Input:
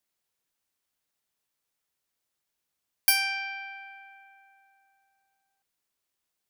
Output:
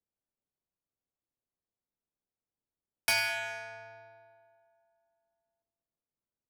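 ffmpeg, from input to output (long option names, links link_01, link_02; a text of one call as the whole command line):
ffmpeg -i in.wav -filter_complex "[0:a]aeval=exprs='val(0)*sin(2*PI*110*n/s)':channel_layout=same,asplit=2[link_01][link_02];[link_02]adelay=212,lowpass=frequency=810:poles=1,volume=-10dB,asplit=2[link_03][link_04];[link_04]adelay=212,lowpass=frequency=810:poles=1,volume=0.43,asplit=2[link_05][link_06];[link_06]adelay=212,lowpass=frequency=810:poles=1,volume=0.43,asplit=2[link_07][link_08];[link_08]adelay=212,lowpass=frequency=810:poles=1,volume=0.43,asplit=2[link_09][link_10];[link_10]adelay=212,lowpass=frequency=810:poles=1,volume=0.43[link_11];[link_01][link_03][link_05][link_07][link_09][link_11]amix=inputs=6:normalize=0,adynamicsmooth=sensitivity=7.5:basefreq=710,volume=1.5dB" out.wav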